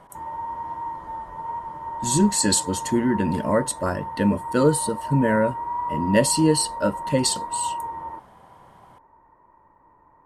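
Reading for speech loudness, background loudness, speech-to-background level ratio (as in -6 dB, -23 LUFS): -22.5 LUFS, -31.5 LUFS, 9.0 dB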